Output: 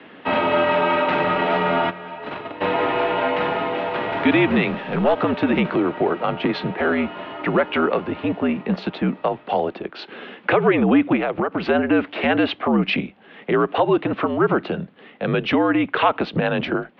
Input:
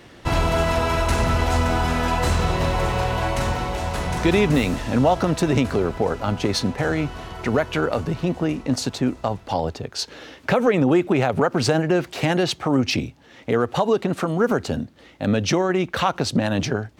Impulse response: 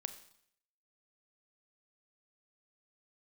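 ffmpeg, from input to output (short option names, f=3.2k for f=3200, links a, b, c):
-filter_complex "[0:a]asplit=3[a][b][c];[a]afade=t=out:st=1.89:d=0.02[d];[b]agate=range=-15dB:threshold=-17dB:ratio=16:detection=peak,afade=t=in:st=1.89:d=0.02,afade=t=out:st=2.6:d=0.02[e];[c]afade=t=in:st=2.6:d=0.02[f];[d][e][f]amix=inputs=3:normalize=0,acrossover=split=400|590|2200[g][h][i][j];[h]alimiter=level_in=4dB:limit=-24dB:level=0:latency=1,volume=-4dB[k];[g][k][i][j]amix=inputs=4:normalize=0,highpass=f=270:t=q:w=0.5412,highpass=f=270:t=q:w=1.307,lowpass=f=3.3k:t=q:w=0.5176,lowpass=f=3.3k:t=q:w=0.7071,lowpass=f=3.3k:t=q:w=1.932,afreqshift=-66,asettb=1/sr,asplit=3[l][m][n];[l]atrim=end=4.704[o];[m]atrim=start=4.7:end=5.18,asetpts=PTS-STARTPTS,afade=t=in:d=0.004:c=qsin,afade=t=out:st=0.476:d=0.004:c=qsin,aeval=exprs='(tanh(3.55*val(0)+0.5)-tanh(0.5))/3.55':c=same[p];[n]atrim=start=5.176[q];[o][p]acrossfade=d=0.004:c1=hsin:c2=qsin[r];[r][q]acrossfade=d=0.004:c1=qsin:c2=hsin,asplit=3[s][t][u];[s]afade=t=out:st=11.15:d=0.02[v];[t]acompressor=threshold=-23dB:ratio=6,afade=t=in:st=11.15:d=0.02,afade=t=out:st=11.69:d=0.02[w];[u]afade=t=in:st=11.69:d=0.02[x];[v][w][x]amix=inputs=3:normalize=0,volume=4.5dB"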